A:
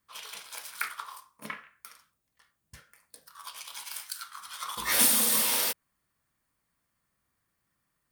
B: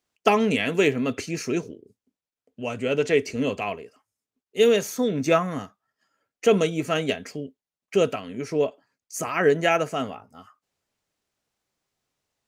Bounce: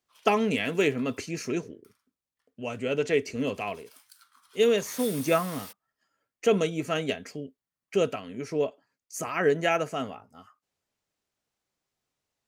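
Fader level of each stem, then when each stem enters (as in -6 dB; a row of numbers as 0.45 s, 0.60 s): -17.0 dB, -4.0 dB; 0.00 s, 0.00 s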